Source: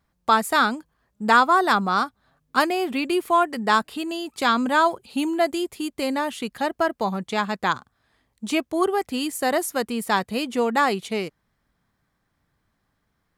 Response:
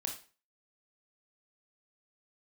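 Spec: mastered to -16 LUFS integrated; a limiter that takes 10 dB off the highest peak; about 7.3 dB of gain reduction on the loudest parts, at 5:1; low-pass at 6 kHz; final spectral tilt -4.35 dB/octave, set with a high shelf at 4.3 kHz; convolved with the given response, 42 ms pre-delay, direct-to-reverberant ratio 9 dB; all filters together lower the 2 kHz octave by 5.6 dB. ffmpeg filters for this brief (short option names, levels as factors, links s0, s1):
-filter_complex "[0:a]lowpass=6000,equalizer=f=2000:t=o:g=-7,highshelf=f=4300:g=-6.5,acompressor=threshold=0.0708:ratio=5,alimiter=limit=0.0708:level=0:latency=1,asplit=2[s0][s1];[1:a]atrim=start_sample=2205,adelay=42[s2];[s1][s2]afir=irnorm=-1:irlink=0,volume=0.335[s3];[s0][s3]amix=inputs=2:normalize=0,volume=5.96"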